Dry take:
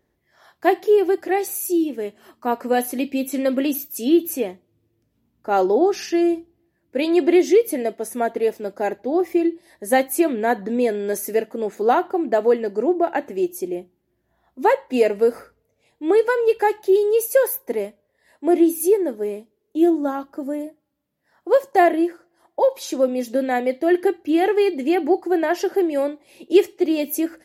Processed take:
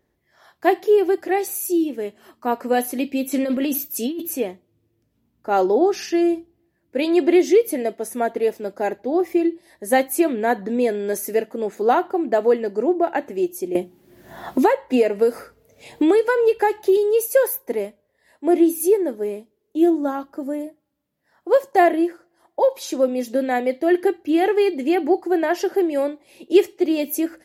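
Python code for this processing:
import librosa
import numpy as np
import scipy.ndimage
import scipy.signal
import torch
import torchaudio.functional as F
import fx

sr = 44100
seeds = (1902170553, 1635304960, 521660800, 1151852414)

y = fx.over_compress(x, sr, threshold_db=-22.0, ratio=-1.0, at=(3.31, 4.22))
y = fx.band_squash(y, sr, depth_pct=100, at=(13.75, 16.97))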